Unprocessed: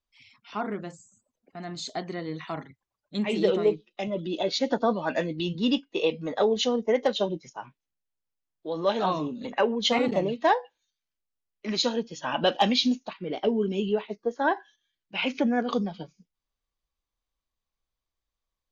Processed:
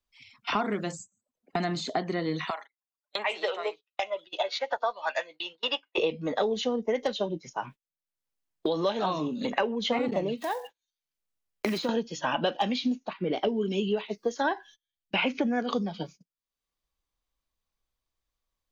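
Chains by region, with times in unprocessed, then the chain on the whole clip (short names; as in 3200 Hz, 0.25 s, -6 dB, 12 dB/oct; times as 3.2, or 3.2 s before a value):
2.5–5.98 HPF 680 Hz 24 dB/oct + upward expander, over -42 dBFS
10.37–11.89 block floating point 5-bit + compressor 2.5:1, threshold -38 dBFS
whole clip: gate -50 dBFS, range -27 dB; three-band squash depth 100%; gain -1.5 dB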